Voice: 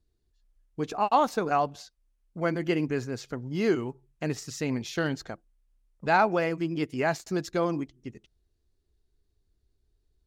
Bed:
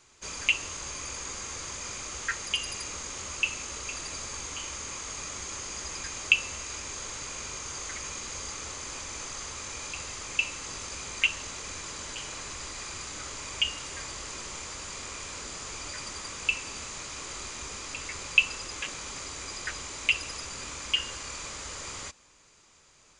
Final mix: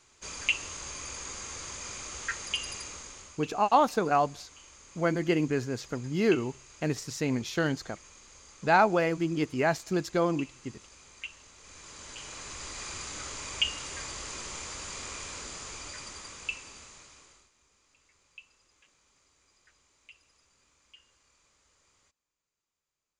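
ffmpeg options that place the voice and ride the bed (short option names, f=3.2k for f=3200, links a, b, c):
-filter_complex "[0:a]adelay=2600,volume=0.5dB[a];[1:a]volume=13dB,afade=t=out:st=2.71:d=0.67:silence=0.211349,afade=t=in:st=11.57:d=1.31:silence=0.16788,afade=t=out:st=15.13:d=2.37:silence=0.0354813[b];[a][b]amix=inputs=2:normalize=0"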